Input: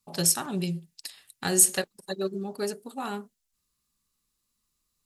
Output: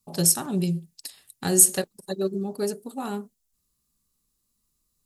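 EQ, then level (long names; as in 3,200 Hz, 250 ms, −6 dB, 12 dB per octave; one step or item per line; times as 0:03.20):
parametric band 2,100 Hz −9 dB 3 octaves
+5.5 dB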